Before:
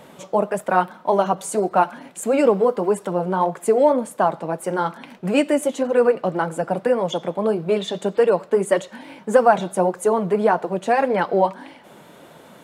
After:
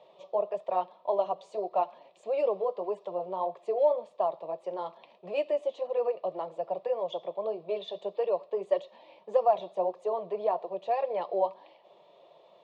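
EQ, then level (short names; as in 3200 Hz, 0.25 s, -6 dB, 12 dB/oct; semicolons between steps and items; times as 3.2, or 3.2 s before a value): speaker cabinet 440–3400 Hz, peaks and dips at 470 Hz -6 dB, 830 Hz -9 dB, 1300 Hz -5 dB, 2100 Hz -10 dB, 3000 Hz -6 dB; fixed phaser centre 630 Hz, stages 4; -3.0 dB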